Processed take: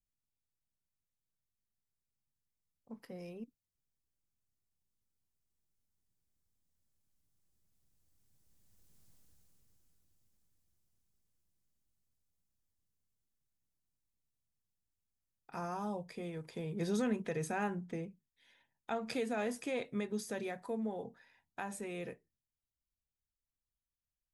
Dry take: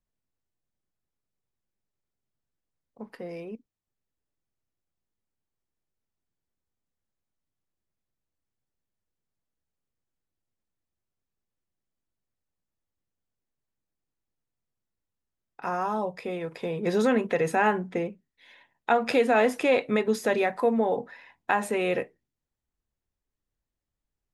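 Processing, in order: Doppler pass-by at 9.08, 11 m/s, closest 4 m; tone controls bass +10 dB, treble +11 dB; gain +12.5 dB

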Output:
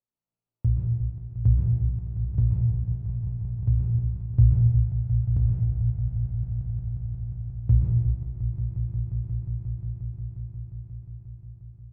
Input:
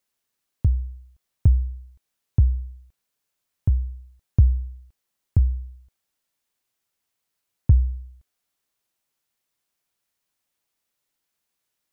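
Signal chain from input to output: Wiener smoothing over 25 samples; bell 120 Hz +12 dB 0.26 oct; resonator 58 Hz, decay 0.62 s, harmonics all, mix 90%; on a send: swelling echo 0.178 s, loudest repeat 5, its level -13 dB; on the sum: plate-style reverb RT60 1.4 s, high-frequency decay 0.8×, pre-delay 0.11 s, DRR -0.5 dB; gain +2.5 dB

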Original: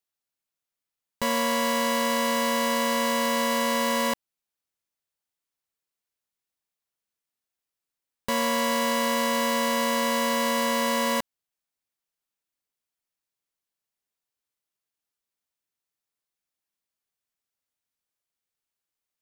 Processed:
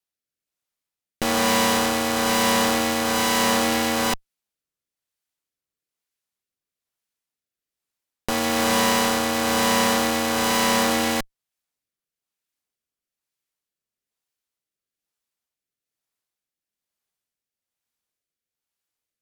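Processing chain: rotary speaker horn 1.1 Hz; added harmonics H 8 -11 dB, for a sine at -13 dBFS; gain +3.5 dB

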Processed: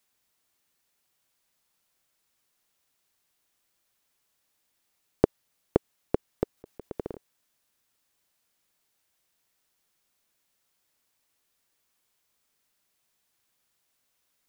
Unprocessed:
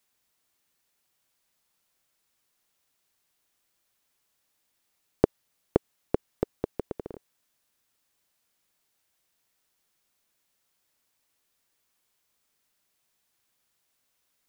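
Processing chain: 6.57–7.14 negative-ratio compressor -35 dBFS, ratio -0.5

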